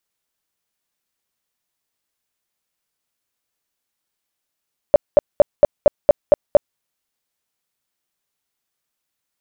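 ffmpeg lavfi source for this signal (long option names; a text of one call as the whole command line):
ffmpeg -f lavfi -i "aevalsrc='0.631*sin(2*PI*586*mod(t,0.23))*lt(mod(t,0.23),11/586)':duration=1.84:sample_rate=44100" out.wav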